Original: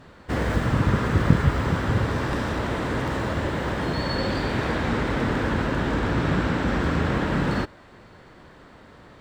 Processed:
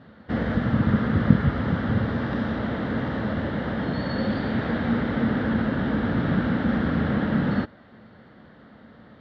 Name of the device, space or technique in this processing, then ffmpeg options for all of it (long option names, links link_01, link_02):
guitar cabinet: -af "highpass=78,equalizer=frequency=220:width_type=q:width=4:gain=9,equalizer=frequency=370:width_type=q:width=4:gain=-5,equalizer=frequency=1000:width_type=q:width=4:gain=-7,equalizer=frequency=2500:width_type=q:width=4:gain=-10,lowpass=frequency=3700:width=0.5412,lowpass=frequency=3700:width=1.3066,volume=-1dB"